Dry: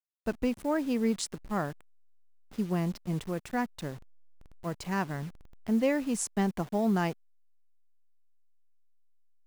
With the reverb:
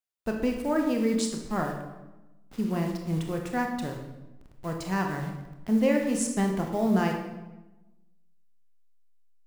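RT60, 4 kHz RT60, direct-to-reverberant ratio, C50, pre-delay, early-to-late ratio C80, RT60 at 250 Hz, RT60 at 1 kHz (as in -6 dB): 1.0 s, 0.75 s, 2.0 dB, 5.0 dB, 23 ms, 7.5 dB, 1.3 s, 1.0 s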